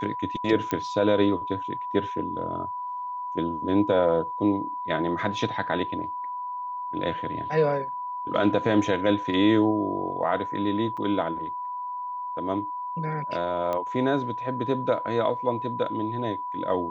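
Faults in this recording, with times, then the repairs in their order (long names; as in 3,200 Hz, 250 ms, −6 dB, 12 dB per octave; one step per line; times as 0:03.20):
whistle 990 Hz −30 dBFS
0:00.71: click −14 dBFS
0:10.97–0:10.98: drop-out 5.4 ms
0:13.73: click −17 dBFS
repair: click removal
notch filter 990 Hz, Q 30
repair the gap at 0:10.97, 5.4 ms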